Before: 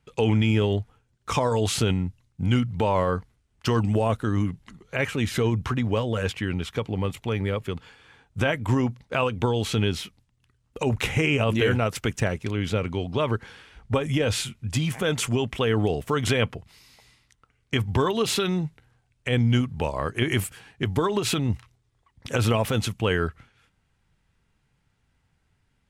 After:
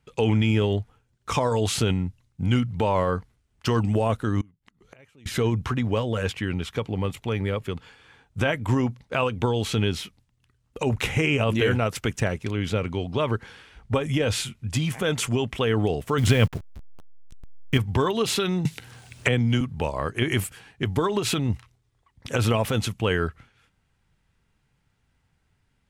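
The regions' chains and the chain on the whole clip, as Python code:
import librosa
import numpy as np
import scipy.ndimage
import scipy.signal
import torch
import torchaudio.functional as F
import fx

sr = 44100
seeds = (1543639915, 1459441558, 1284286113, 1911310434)

y = fx.chain(x, sr, fx.dynamic_eq(hz=1600.0, q=1.3, threshold_db=-39.0, ratio=4.0, max_db=-4),
    fx.gate_flip(shuts_db=-32.0, range_db=-27), at=(4.41, 5.26))
y = fx.chain(y, sr, fx.delta_hold(step_db=-38.5),
    fx.bass_treble(bass_db=8, treble_db=1), at=(16.18, 17.78))
y = fx.chain(y, sr, fx.highpass(hz=92.0, slope=12),
    fx.band_squash(depth_pct=100), at=(18.65, 19.61))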